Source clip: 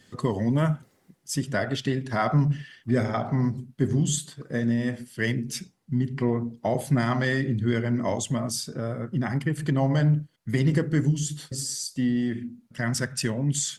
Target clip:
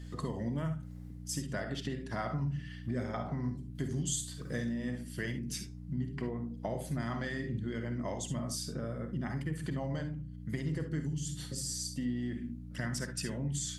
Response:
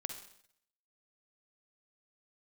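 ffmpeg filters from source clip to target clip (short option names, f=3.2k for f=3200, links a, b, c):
-filter_complex "[0:a]asettb=1/sr,asplit=3[a][b][c];[a]atrim=end=3.754[d];[b]atrim=start=3.75:end=4.69,asetpts=PTS-STARTPTS,afade=t=in:d=0.004:c=qsin,afade=t=out:st=0.936:d=0.004:c=qsin,highshelf=f=2.3k:g=10.5[e];[c]atrim=start=4.686[f];[d][e]acrossfade=d=0.004:c1=hsin:c2=qsin[g];[g][f]acrossfade=d=0.004:c1=qsin:c2=hsin,acompressor=threshold=-35dB:ratio=3,aeval=exprs='val(0)+0.00891*(sin(2*PI*60*n/s)+sin(2*PI*2*60*n/s)/2+sin(2*PI*3*60*n/s)/3+sin(2*PI*4*60*n/s)/4+sin(2*PI*5*60*n/s)/5)':c=same[h];[1:a]atrim=start_sample=2205,atrim=end_sample=3528[i];[h][i]afir=irnorm=-1:irlink=0"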